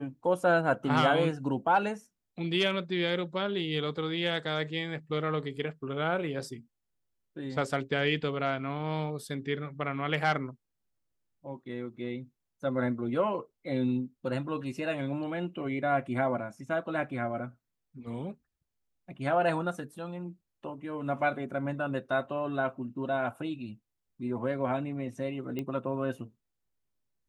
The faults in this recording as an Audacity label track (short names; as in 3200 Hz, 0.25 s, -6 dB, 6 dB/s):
25.590000	25.590000	pop -22 dBFS